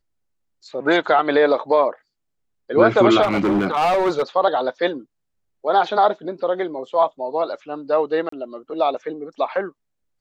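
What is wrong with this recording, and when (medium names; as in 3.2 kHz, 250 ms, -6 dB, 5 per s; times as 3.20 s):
3.22–4.22 s: clipped -14.5 dBFS
8.29–8.32 s: dropout 34 ms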